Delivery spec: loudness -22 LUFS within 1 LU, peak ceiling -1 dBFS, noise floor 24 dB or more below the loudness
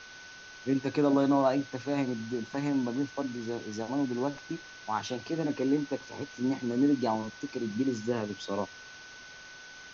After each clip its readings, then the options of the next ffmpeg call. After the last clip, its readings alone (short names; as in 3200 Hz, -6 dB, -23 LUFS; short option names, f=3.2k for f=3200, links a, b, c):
steady tone 1500 Hz; tone level -48 dBFS; noise floor -49 dBFS; noise floor target -55 dBFS; loudness -31.0 LUFS; peak -14.5 dBFS; loudness target -22.0 LUFS
-> -af "bandreject=f=1.5k:w=30"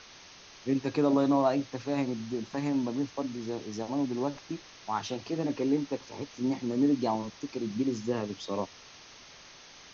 steady tone none; noise floor -52 dBFS; noise floor target -55 dBFS
-> -af "afftdn=nr=6:nf=-52"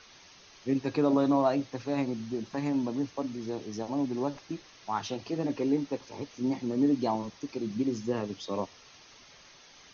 noise floor -55 dBFS; loudness -31.0 LUFS; peak -14.5 dBFS; loudness target -22.0 LUFS
-> -af "volume=9dB"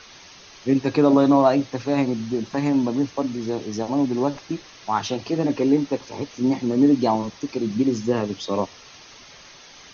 loudness -22.0 LUFS; peak -5.5 dBFS; noise floor -46 dBFS